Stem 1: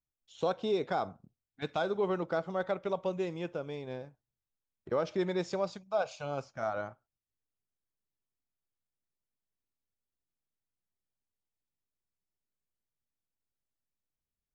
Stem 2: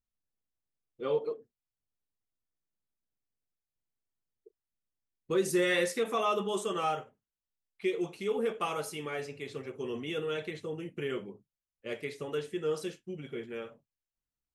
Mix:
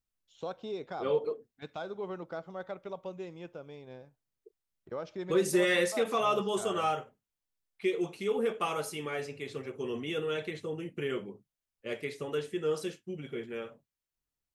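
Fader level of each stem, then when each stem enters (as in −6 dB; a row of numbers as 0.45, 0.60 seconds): −7.5, +1.0 decibels; 0.00, 0.00 seconds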